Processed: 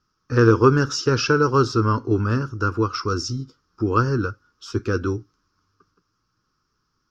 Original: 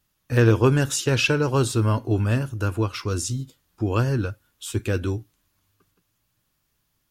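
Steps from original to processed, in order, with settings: FFT filter 110 Hz 0 dB, 450 Hz +6 dB, 660 Hz -10 dB, 1.3 kHz +14 dB, 1.9 kHz -5 dB, 3.7 kHz -7 dB, 5.4 kHz +9 dB, 8.5 kHz -24 dB; trim -1 dB

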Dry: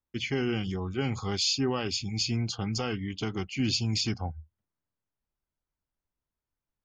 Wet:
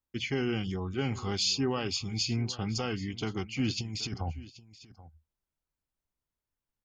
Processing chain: 3.70–4.39 s: compressor with a negative ratio -32 dBFS, ratio -0.5; on a send: delay 780 ms -18.5 dB; on the sum: trim -1.5 dB

